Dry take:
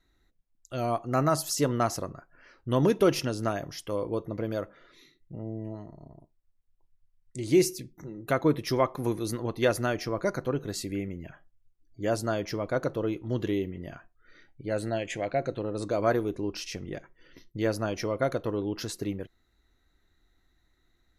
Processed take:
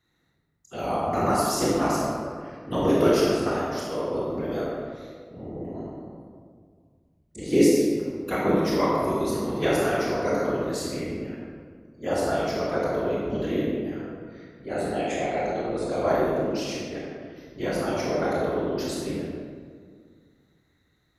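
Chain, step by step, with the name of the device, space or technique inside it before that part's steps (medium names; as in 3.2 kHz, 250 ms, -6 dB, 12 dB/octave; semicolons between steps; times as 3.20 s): whispering ghost (whisper effect; high-pass 200 Hz 6 dB/octave; reverberation RT60 1.9 s, pre-delay 22 ms, DRR -5 dB); trim -2 dB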